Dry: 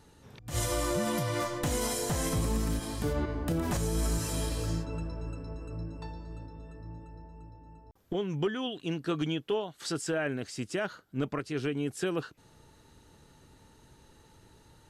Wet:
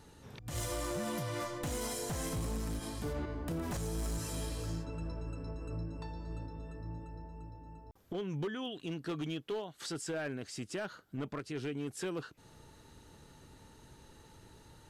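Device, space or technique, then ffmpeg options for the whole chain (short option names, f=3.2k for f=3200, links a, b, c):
clipper into limiter: -af "asoftclip=type=hard:threshold=-26dB,alimiter=level_in=9dB:limit=-24dB:level=0:latency=1:release=283,volume=-9dB,volume=1dB"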